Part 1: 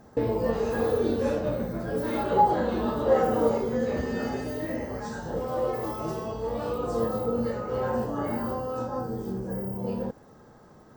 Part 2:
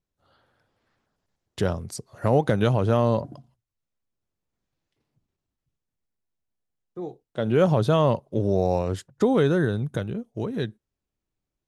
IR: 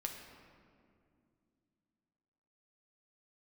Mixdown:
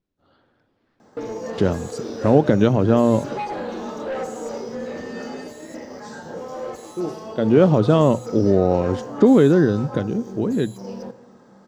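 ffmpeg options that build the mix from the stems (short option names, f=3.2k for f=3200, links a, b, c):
-filter_complex "[0:a]highpass=160,aemphasis=mode=production:type=50fm,asoftclip=type=tanh:threshold=-23dB,adelay=1000,volume=-2.5dB,asplit=2[a][b];[b]volume=-5dB[c];[1:a]equalizer=f=280:t=o:w=1.3:g=9.5,volume=1dB[d];[2:a]atrim=start_sample=2205[e];[c][e]afir=irnorm=-1:irlink=0[f];[a][d][f]amix=inputs=3:normalize=0,lowpass=5.2k,bandreject=f=60:t=h:w=6,bandreject=f=120:t=h:w=6"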